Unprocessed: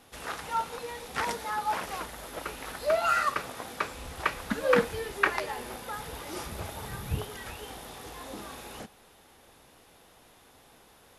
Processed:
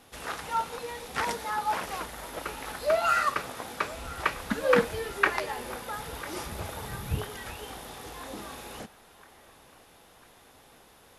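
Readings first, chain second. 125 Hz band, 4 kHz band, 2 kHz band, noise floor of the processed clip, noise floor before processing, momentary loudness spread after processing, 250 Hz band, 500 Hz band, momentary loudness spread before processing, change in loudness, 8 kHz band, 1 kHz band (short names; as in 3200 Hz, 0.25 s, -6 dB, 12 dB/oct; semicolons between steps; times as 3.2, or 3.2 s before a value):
+1.0 dB, +1.0 dB, +1.0 dB, -57 dBFS, -58 dBFS, 16 LU, +1.0 dB, +1.0 dB, 16 LU, +1.0 dB, +1.0 dB, +1.0 dB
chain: band-limited delay 0.999 s, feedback 53%, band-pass 1200 Hz, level -18.5 dB; gain +1 dB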